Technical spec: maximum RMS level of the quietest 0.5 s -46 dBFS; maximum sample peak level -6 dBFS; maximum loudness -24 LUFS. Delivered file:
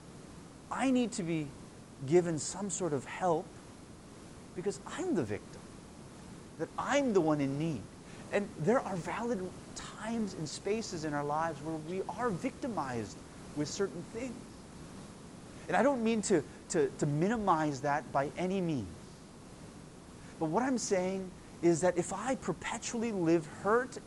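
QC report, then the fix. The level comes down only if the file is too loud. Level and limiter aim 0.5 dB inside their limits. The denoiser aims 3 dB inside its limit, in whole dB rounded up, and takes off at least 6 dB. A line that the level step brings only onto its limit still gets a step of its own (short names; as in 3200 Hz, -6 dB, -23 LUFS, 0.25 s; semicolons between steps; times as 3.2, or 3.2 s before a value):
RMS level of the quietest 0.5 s -51 dBFS: OK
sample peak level -15.5 dBFS: OK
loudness -34.0 LUFS: OK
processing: none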